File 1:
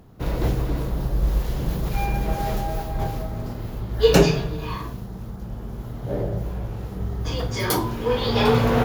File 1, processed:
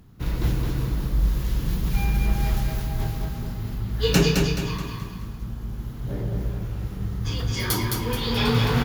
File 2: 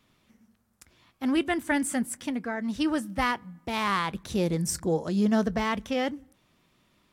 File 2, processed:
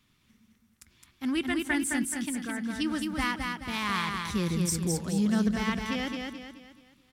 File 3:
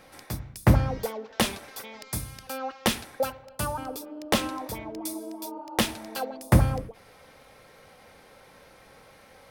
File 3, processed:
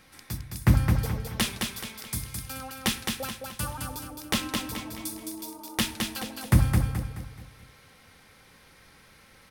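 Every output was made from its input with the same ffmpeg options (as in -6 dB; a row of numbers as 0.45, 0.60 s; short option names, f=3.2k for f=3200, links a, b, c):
-af "equalizer=f=600:w=0.94:g=-12,aecho=1:1:214|428|642|856|1070:0.631|0.259|0.106|0.0435|0.0178"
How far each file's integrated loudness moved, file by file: -1.5, -1.5, -0.5 LU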